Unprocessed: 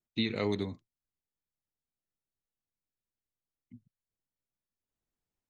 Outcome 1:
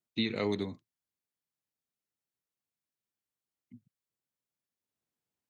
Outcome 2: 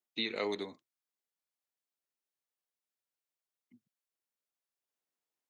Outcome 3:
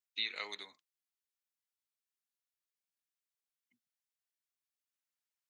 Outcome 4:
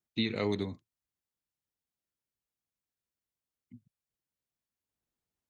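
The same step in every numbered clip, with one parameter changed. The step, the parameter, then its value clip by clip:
high-pass filter, corner frequency: 110, 400, 1,400, 42 Hertz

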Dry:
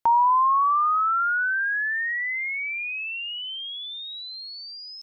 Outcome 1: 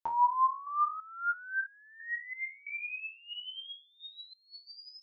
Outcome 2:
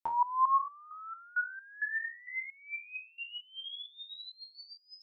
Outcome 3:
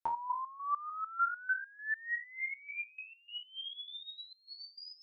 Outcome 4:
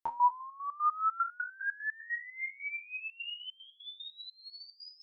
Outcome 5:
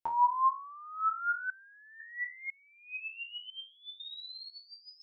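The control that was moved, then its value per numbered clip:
step-sequenced resonator, speed: 3, 4.4, 6.7, 10, 2 Hertz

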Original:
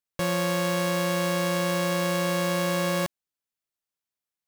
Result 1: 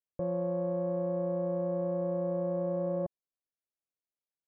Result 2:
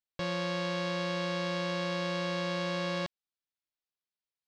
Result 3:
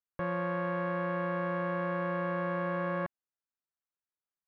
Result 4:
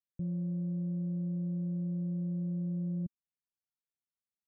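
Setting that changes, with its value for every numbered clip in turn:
transistor ladder low-pass, frequency: 750, 5,400, 1,900, 260 Hertz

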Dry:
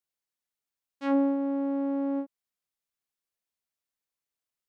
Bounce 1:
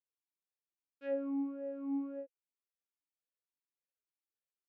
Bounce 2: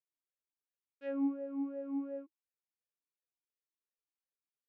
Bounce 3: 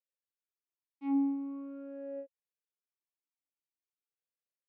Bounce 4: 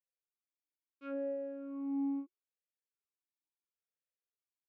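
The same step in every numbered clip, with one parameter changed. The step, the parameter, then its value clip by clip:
formant filter swept between two vowels, speed: 1.8, 2.8, 0.44, 0.74 Hertz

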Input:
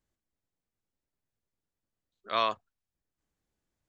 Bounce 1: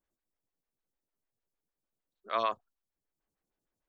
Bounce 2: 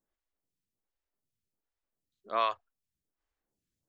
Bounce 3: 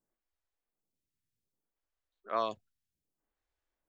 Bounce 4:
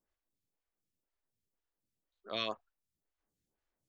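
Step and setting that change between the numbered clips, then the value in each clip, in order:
phaser with staggered stages, speed: 6.6, 1.3, 0.64, 2 Hertz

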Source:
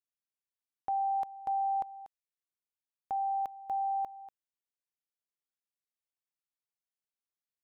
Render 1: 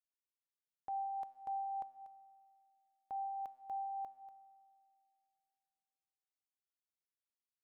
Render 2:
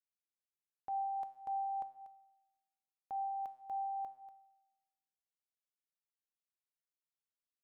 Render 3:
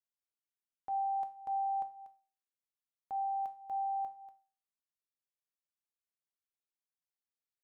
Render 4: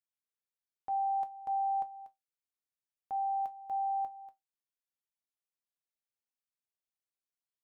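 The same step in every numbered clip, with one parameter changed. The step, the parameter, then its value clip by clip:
tuned comb filter, decay: 2.2, 0.98, 0.38, 0.16 seconds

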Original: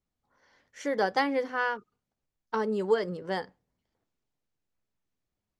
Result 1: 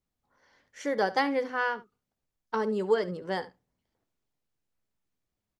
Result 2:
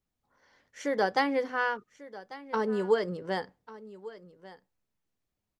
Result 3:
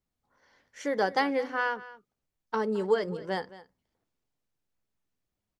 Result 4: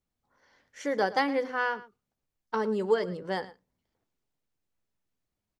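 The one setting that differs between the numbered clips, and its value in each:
single-tap delay, delay time: 71, 1,144, 216, 112 milliseconds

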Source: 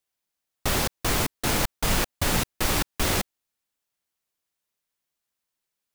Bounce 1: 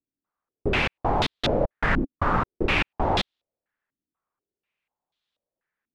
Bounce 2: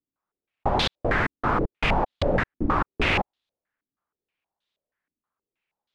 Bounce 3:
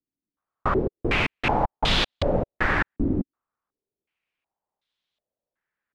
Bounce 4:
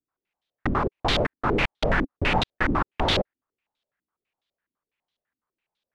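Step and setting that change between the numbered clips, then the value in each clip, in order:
low-pass on a step sequencer, speed: 4.1, 6.3, 2.7, 12 Hertz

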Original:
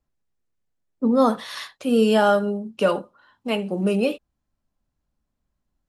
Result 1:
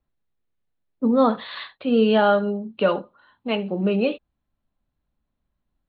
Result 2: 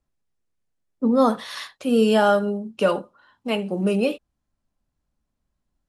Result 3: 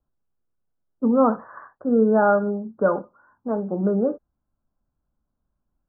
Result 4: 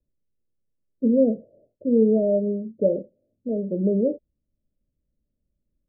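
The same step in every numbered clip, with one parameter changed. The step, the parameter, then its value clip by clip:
Butterworth low-pass, frequency: 4,300, 12,000, 1,600, 620 Hertz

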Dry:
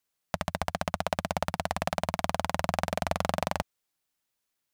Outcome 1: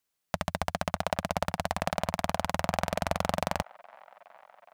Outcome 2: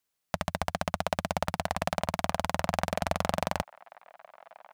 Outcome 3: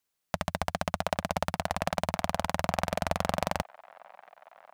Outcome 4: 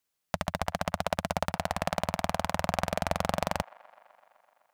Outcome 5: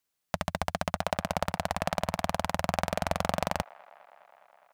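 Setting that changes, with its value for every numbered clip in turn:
delay with a band-pass on its return, delay time: 416, 1,133, 678, 127, 206 milliseconds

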